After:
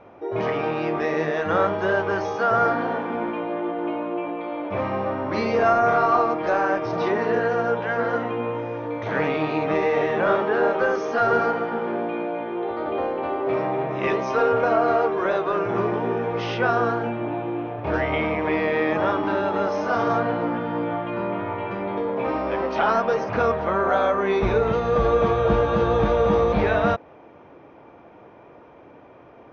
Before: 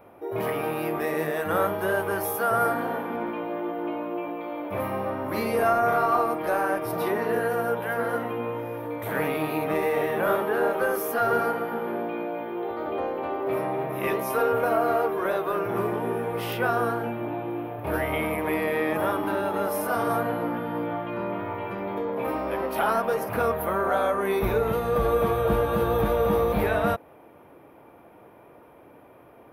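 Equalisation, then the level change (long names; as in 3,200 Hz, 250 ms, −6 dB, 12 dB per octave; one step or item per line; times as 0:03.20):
linear-phase brick-wall low-pass 6,500 Hz
+3.5 dB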